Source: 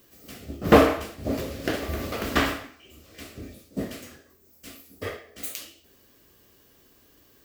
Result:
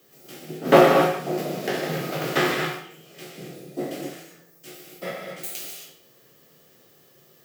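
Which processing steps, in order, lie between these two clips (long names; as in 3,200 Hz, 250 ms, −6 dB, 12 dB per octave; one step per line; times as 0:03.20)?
peak hold with a decay on every bin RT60 0.36 s
frequency shifter +86 Hz
reverb whose tail is shaped and stops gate 290 ms flat, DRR 0.5 dB
level −2 dB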